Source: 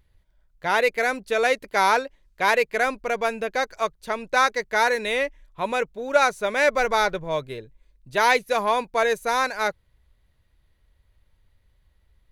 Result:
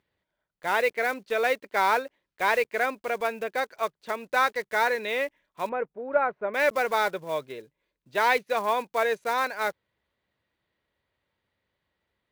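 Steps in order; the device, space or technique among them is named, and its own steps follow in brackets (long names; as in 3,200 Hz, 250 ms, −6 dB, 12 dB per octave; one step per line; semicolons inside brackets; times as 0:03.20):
early digital voice recorder (band-pass filter 220–3,900 Hz; one scale factor per block 5 bits)
0:05.69–0:06.54: Bessel low-pass filter 1,300 Hz, order 4
level −3.5 dB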